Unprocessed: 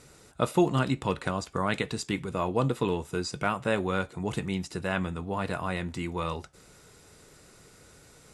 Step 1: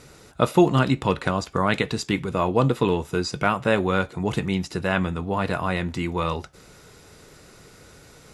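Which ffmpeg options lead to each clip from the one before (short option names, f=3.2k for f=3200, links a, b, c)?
-af "equalizer=f=8.6k:w=2.1:g=-7,volume=6.5dB"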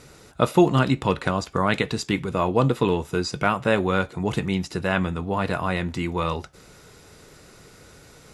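-af anull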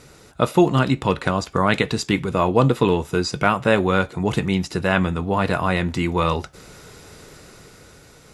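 -af "dynaudnorm=f=160:g=13:m=5dB,volume=1dB"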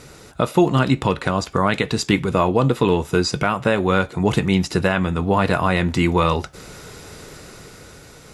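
-af "alimiter=limit=-9dB:level=0:latency=1:release=332,volume=4.5dB"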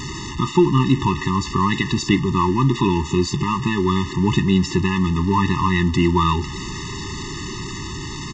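-af "aeval=exprs='val(0)+0.5*0.0794*sgn(val(0))':c=same,aresample=16000,aresample=44100,afftfilt=real='re*eq(mod(floor(b*sr/1024/430),2),0)':imag='im*eq(mod(floor(b*sr/1024/430),2),0)':win_size=1024:overlap=0.75"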